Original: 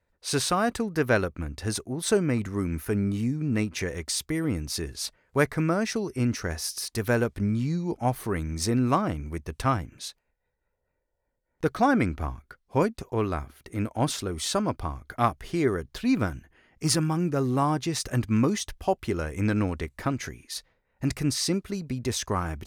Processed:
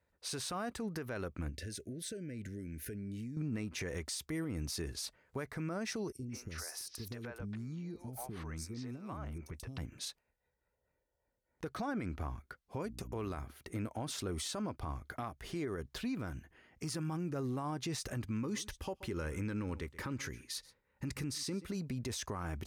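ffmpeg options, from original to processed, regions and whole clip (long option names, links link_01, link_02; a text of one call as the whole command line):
ffmpeg -i in.wav -filter_complex "[0:a]asettb=1/sr,asplit=3[link_01][link_02][link_03];[link_01]atrim=end=1.494[link_04];[link_02]atrim=start=1.49:end=3.37,asetpts=PTS-STARTPTS,afade=type=in:duration=0.004:curve=qsin,afade=type=out:start_time=1.876:duration=0.004:curve=qsin,acompressor=threshold=-36dB:ratio=12:attack=3.2:release=140:knee=1:detection=peak,asuperstop=centerf=970:order=12:qfactor=1.1[link_05];[link_03]atrim=start=3.366[link_06];[link_04][link_05]acrossfade=duration=0.004:curve1=hsin:curve2=qsin[link_07];[link_07][link_06]acrossfade=duration=0.004:curve1=qsin:curve2=hsin,asettb=1/sr,asplit=3[link_08][link_09][link_10];[link_08]atrim=end=6.124[link_11];[link_09]atrim=start=6.12:end=9.78,asetpts=PTS-STARTPTS,afade=type=in:duration=0.004:curve=qsin,afade=type=out:start_time=3.656:duration=0.004:curve=qsin,acompressor=threshold=-35dB:ratio=16:attack=3.2:release=140:knee=1:detection=peak,acrossover=split=450|4500[link_12][link_13][link_14];[link_12]adelay=30[link_15];[link_13]adelay=170[link_16];[link_15][link_16][link_14]amix=inputs=3:normalize=0,atrim=end_sample=161406[link_17];[link_10]atrim=start=9.776[link_18];[link_11][link_17]acrossfade=duration=0.004:curve1=hsin:curve2=qsin[link_19];[link_19][link_18]acrossfade=duration=0.004:curve1=qsin:curve2=hsin,asettb=1/sr,asplit=3[link_20][link_21][link_22];[link_20]atrim=end=12.844[link_23];[link_21]atrim=start=12.84:end=13.41,asetpts=PTS-STARTPTS,afade=type=in:duration=0.004:curve=qsin,afade=type=out:start_time=0.566:duration=0.004:curve=qsin,agate=range=-30dB:threshold=-47dB:ratio=16:release=100:detection=peak,highshelf=frequency=4700:gain=6,aeval=exprs='val(0)+0.00891*(sin(2*PI*60*n/s)+sin(2*PI*2*60*n/s)/2+sin(2*PI*3*60*n/s)/3+sin(2*PI*4*60*n/s)/4+sin(2*PI*5*60*n/s)/5)':channel_layout=same[link_24];[link_22]atrim=start=13.406[link_25];[link_23][link_24]acrossfade=duration=0.004:curve1=hsin:curve2=qsin[link_26];[link_26][link_25]acrossfade=duration=0.004:curve1=qsin:curve2=hsin,asettb=1/sr,asplit=3[link_27][link_28][link_29];[link_27]atrim=end=18.284[link_30];[link_28]atrim=start=18.28:end=21.66,asetpts=PTS-STARTPTS,afade=type=in:duration=0.004:curve=qsin,afade=type=out:start_time=3.376:duration=0.004:curve=qsin,asuperstop=centerf=690:order=4:qfactor=3.8,aecho=1:1:128:0.0668,atrim=end_sample=149058[link_31];[link_29]atrim=start=21.656[link_32];[link_30][link_31]acrossfade=duration=0.004:curve1=hsin:curve2=qsin[link_33];[link_33][link_32]acrossfade=duration=0.004:curve1=qsin:curve2=hsin,highpass=43,acompressor=threshold=-28dB:ratio=6,alimiter=level_in=3.5dB:limit=-24dB:level=0:latency=1:release=53,volume=-3.5dB,volume=-3dB" out.wav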